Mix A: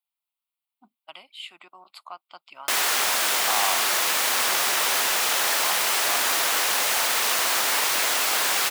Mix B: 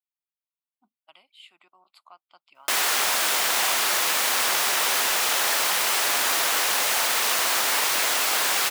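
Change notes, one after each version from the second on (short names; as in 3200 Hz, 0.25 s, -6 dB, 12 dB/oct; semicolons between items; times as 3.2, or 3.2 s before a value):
speech -10.5 dB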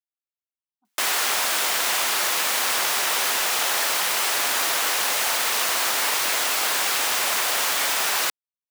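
speech -5.0 dB; background: entry -1.70 s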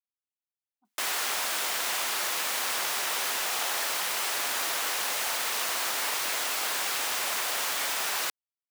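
background -7.0 dB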